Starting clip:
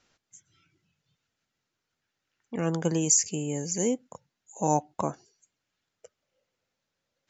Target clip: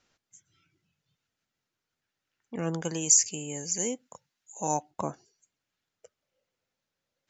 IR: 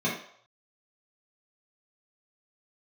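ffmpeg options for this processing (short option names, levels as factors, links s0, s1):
-filter_complex "[0:a]asettb=1/sr,asplit=3[s0][s1][s2];[s0]atrim=end=2.814[s3];[s1]atrim=start=2.81:end=4.91,asetpts=PTS-STARTPTS,afade=t=in:d=0.004:c=qsin,afade=t=out:st=2.096:d=0.004:c=qsin,tiltshelf=f=910:g=-5[s4];[s2]atrim=start=4.906[s5];[s3][s4]acrossfade=d=0.004:c1=hsin:c2=qsin[s6];[s6][s5]acrossfade=d=0.004:c1=qsin:c2=hsin,volume=0.708"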